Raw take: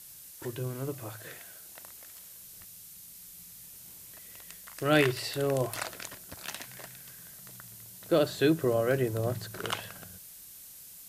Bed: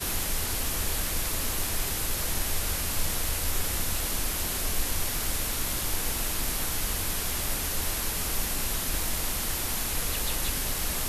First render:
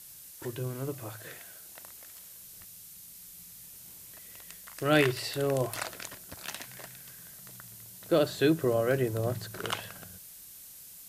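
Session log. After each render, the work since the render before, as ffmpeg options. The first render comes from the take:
-af anull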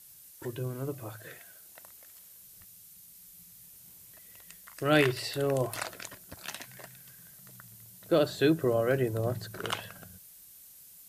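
-af "afftdn=nr=6:nf=-49"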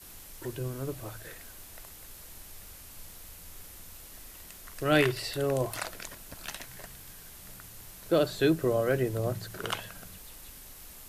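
-filter_complex "[1:a]volume=-20.5dB[a];[0:a][a]amix=inputs=2:normalize=0"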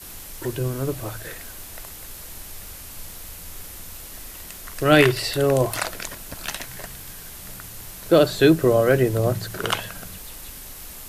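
-af "volume=9.5dB,alimiter=limit=-3dB:level=0:latency=1"

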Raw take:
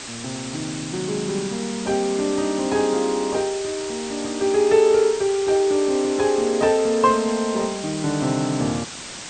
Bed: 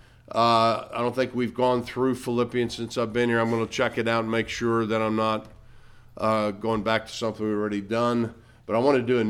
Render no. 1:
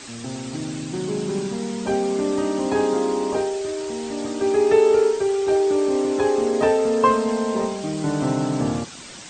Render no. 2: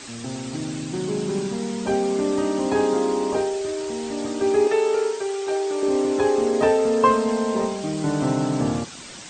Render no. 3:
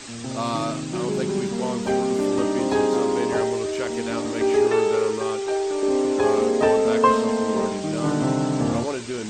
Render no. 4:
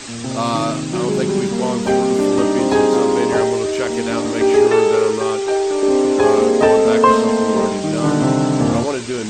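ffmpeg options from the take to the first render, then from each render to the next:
-af "afftdn=nr=7:nf=-35"
-filter_complex "[0:a]asettb=1/sr,asplit=3[a][b][c];[a]atrim=end=4.674[d];[b]atrim=start=4.67:end=5.83,asetpts=PTS-STARTPTS,afade=t=in:d=0.004:c=qsin,afade=t=out:st=1.156:d=0.004:c=qsin,highpass=f=650:p=1[e];[c]atrim=start=5.826[f];[d][e]acrossfade=d=0.004:c1=hsin:c2=qsin[g];[g][f]acrossfade=d=0.004:c1=qsin:c2=hsin"
-filter_complex "[1:a]volume=-7.5dB[a];[0:a][a]amix=inputs=2:normalize=0"
-af "volume=6.5dB,alimiter=limit=-1dB:level=0:latency=1"

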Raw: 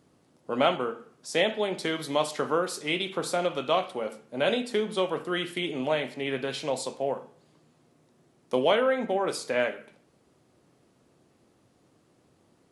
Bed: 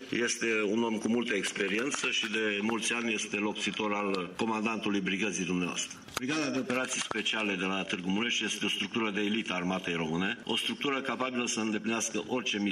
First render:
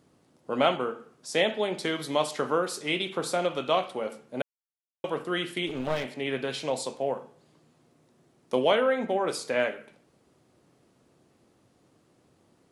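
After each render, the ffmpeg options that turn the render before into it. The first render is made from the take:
-filter_complex "[0:a]asplit=3[a][b][c];[a]afade=t=out:st=5.66:d=0.02[d];[b]aeval=exprs='clip(val(0),-1,0.0237)':c=same,afade=t=in:st=5.66:d=0.02,afade=t=out:st=6.15:d=0.02[e];[c]afade=t=in:st=6.15:d=0.02[f];[d][e][f]amix=inputs=3:normalize=0,asplit=3[g][h][i];[g]atrim=end=4.42,asetpts=PTS-STARTPTS,afade=t=out:st=4.416:d=0.004:c=hsin[j];[h]atrim=start=4.42:end=5.04,asetpts=PTS-STARTPTS,volume=0[k];[i]atrim=start=5.04,asetpts=PTS-STARTPTS,afade=t=in:d=0.004:c=hsin[l];[j][k][l]concat=n=3:v=0:a=1"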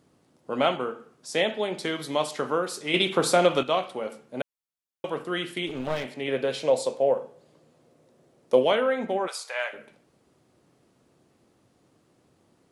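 -filter_complex "[0:a]asettb=1/sr,asplit=3[a][b][c];[a]atrim=end=6.284[d];[b]atrim=start=6.28:end=8.63,asetpts=PTS-STARTPTS,afade=t=in:d=0.004:c=qsin,afade=t=out:st=2.346:d=0.004:c=qsin,equalizer=f=530:t=o:w=0.59:g=9.5[e];[c]atrim=start=8.626[f];[d][e]acrossfade=d=0.004:c1=hsin:c2=qsin[g];[g][f]acrossfade=d=0.004:c1=qsin:c2=hsin,asplit=3[h][i][j];[h]afade=t=out:st=9.26:d=0.02[k];[i]highpass=f=710:w=0.5412,highpass=f=710:w=1.3066,afade=t=in:st=9.26:d=0.02,afade=t=out:st=9.72:d=0.02[l];[j]afade=t=in:st=9.72:d=0.02[m];[k][l][m]amix=inputs=3:normalize=0,asplit=3[n][o][p];[n]atrim=end=2.942[q];[o]atrim=start=2.938:end=3.632,asetpts=PTS-STARTPTS,volume=7.5dB[r];[p]atrim=start=3.628[s];[q][r]acrossfade=d=0.004:c1=hsin:c2=hsin[t];[t][s]acrossfade=d=0.004:c1=hsin:c2=hsin"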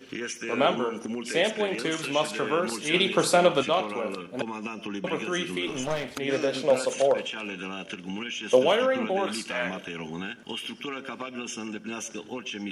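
-filter_complex "[1:a]volume=-4dB[a];[0:a][a]amix=inputs=2:normalize=0"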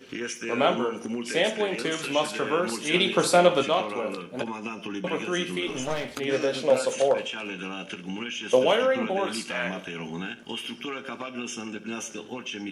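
-af "aecho=1:1:17|66:0.335|0.158"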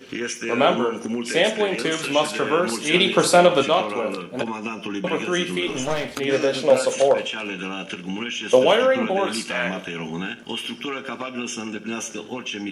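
-af "volume=5dB,alimiter=limit=-3dB:level=0:latency=1"

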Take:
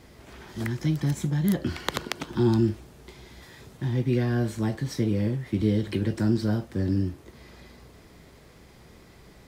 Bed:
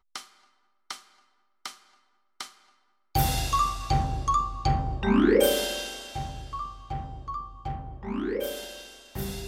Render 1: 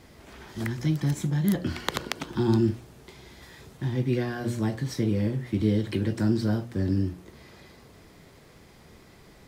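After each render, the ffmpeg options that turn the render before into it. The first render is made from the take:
-af "bandreject=f=60:t=h:w=4,bandreject=f=120:t=h:w=4,bandreject=f=180:t=h:w=4,bandreject=f=240:t=h:w=4,bandreject=f=300:t=h:w=4,bandreject=f=360:t=h:w=4,bandreject=f=420:t=h:w=4,bandreject=f=480:t=h:w=4,bandreject=f=540:t=h:w=4,bandreject=f=600:t=h:w=4"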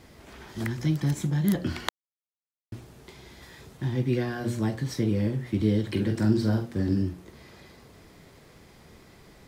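-filter_complex "[0:a]asettb=1/sr,asplit=3[a][b][c];[a]atrim=end=5.904[d];[b]atrim=start=5.9:end=7.02,asetpts=PTS-STARTPTS,afade=t=in:d=0.004:c=qsin,afade=t=out:st=1.116:d=0.004:c=qsin,asplit=2[e][f];[f]adelay=46,volume=-7dB[g];[e][g]amix=inputs=2:normalize=0,atrim=end_sample=49392[h];[c]atrim=start=7.016[i];[d][h]acrossfade=d=0.004:c1=hsin:c2=qsin[j];[j][i]acrossfade=d=0.004:c1=qsin:c2=hsin,asplit=3[k][l][m];[k]atrim=end=1.89,asetpts=PTS-STARTPTS,afade=t=out:st=1.886:d=0.004:c=hsin[n];[l]atrim=start=1.89:end=2.72,asetpts=PTS-STARTPTS,volume=0[o];[m]atrim=start=2.72,asetpts=PTS-STARTPTS,afade=t=in:d=0.004:c=hsin[p];[n][o][p]concat=n=3:v=0:a=1"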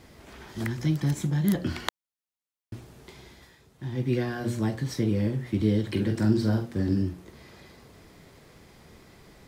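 -filter_complex "[0:a]asplit=3[a][b][c];[a]atrim=end=3.59,asetpts=PTS-STARTPTS,afade=t=out:st=3.2:d=0.39:silence=0.298538[d];[b]atrim=start=3.59:end=3.74,asetpts=PTS-STARTPTS,volume=-10.5dB[e];[c]atrim=start=3.74,asetpts=PTS-STARTPTS,afade=t=in:d=0.39:silence=0.298538[f];[d][e][f]concat=n=3:v=0:a=1"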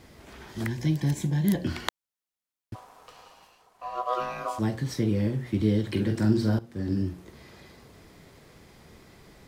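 -filter_complex "[0:a]asettb=1/sr,asplit=3[a][b][c];[a]atrim=end=0.684[d];[b]atrim=start=0.68:end=1.67,asetpts=PTS-STARTPTS,afade=t=in:d=0.004:c=qsin,afade=t=out:st=0.986:d=0.004:c=qsin,asuperstop=centerf=1300:order=4:qfactor=3.7[e];[c]atrim=start=1.666[f];[d][e]acrossfade=d=0.004:c1=hsin:c2=qsin[g];[g][f]acrossfade=d=0.004:c1=qsin:c2=hsin,asplit=3[h][i][j];[h]afade=t=out:st=2.74:d=0.02[k];[i]aeval=exprs='val(0)*sin(2*PI*870*n/s)':c=same,afade=t=in:st=2.74:d=0.02,afade=t=out:st=4.58:d=0.02[l];[j]afade=t=in:st=4.58:d=0.02[m];[k][l][m]amix=inputs=3:normalize=0,asplit=2[n][o];[n]atrim=end=6.59,asetpts=PTS-STARTPTS,afade=t=out:st=6.586:d=0.004:c=hsin:silence=0.188365[p];[o]atrim=start=6.59,asetpts=PTS-STARTPTS,afade=t=in:d=0.69:c=qsin:silence=0.188365[q];[p][q]concat=n=2:v=0:a=1"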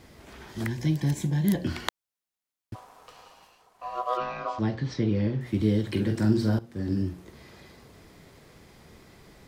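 -filter_complex "[0:a]asettb=1/sr,asplit=3[a][b][c];[a]atrim=end=4.174[d];[b]atrim=start=4.17:end=5.41,asetpts=PTS-STARTPTS,afade=t=in:d=0.004:c=qsin,afade=t=out:st=1.236:d=0.004:c=qsin,lowpass=f=5.1k:w=0.5412,lowpass=f=5.1k:w=1.3066[e];[c]atrim=start=5.406[f];[d][e]acrossfade=d=0.004:c1=hsin:c2=qsin[g];[g][f]acrossfade=d=0.004:c1=qsin:c2=hsin"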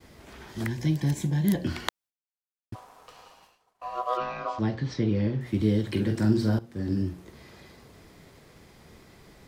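-af "agate=range=-33dB:threshold=-52dB:ratio=3:detection=peak"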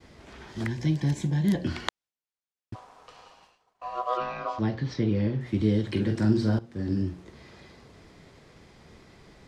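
-af "lowpass=7k"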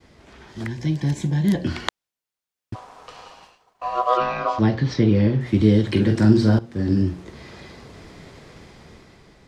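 -af "dynaudnorm=f=210:g=9:m=9.5dB"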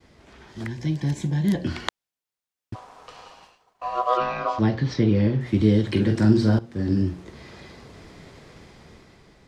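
-af "volume=-2.5dB"

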